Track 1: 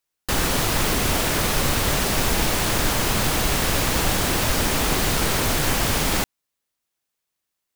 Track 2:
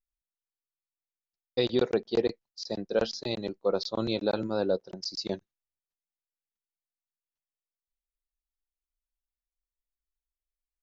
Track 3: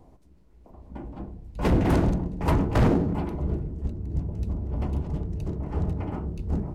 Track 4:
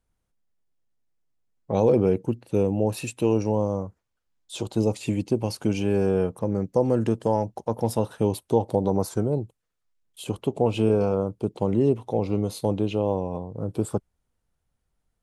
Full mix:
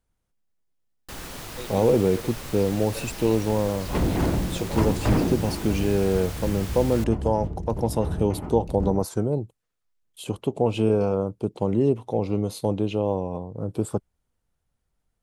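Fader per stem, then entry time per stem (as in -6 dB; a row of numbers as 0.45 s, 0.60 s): -16.0 dB, -12.5 dB, -2.0 dB, 0.0 dB; 0.80 s, 0.00 s, 2.30 s, 0.00 s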